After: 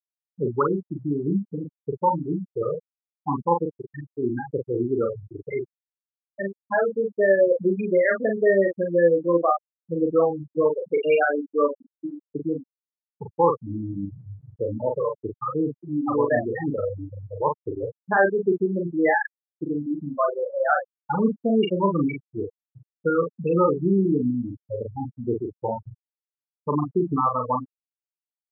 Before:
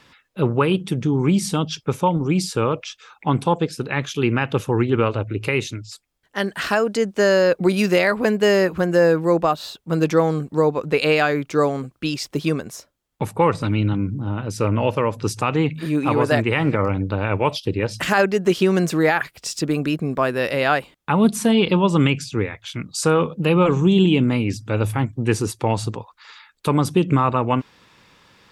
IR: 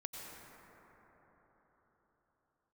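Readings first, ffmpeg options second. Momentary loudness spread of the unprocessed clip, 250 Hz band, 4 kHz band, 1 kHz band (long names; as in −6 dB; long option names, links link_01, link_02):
9 LU, −6.0 dB, below −15 dB, −3.0 dB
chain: -filter_complex "[0:a]afftfilt=real='re*gte(hypot(re,im),0.501)':imag='im*gte(hypot(re,im),0.501)':win_size=1024:overlap=0.75,highpass=frequency=460:poles=1,asplit=2[link_01][link_02];[link_02]adelay=41,volume=-4dB[link_03];[link_01][link_03]amix=inputs=2:normalize=0"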